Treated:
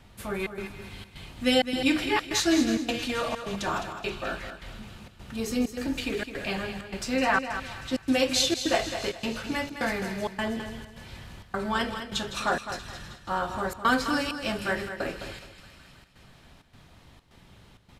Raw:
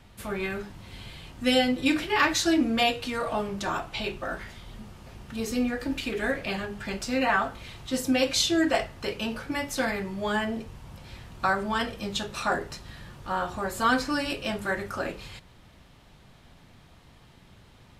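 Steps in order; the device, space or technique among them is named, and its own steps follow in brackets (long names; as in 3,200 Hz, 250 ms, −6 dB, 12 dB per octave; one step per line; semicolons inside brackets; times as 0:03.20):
delay with a high-pass on its return 159 ms, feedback 76%, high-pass 2,200 Hz, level −11.5 dB
trance gate with a delay (gate pattern "xxxx.xxxx." 130 BPM −60 dB; repeating echo 210 ms, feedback 28%, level −9.5 dB)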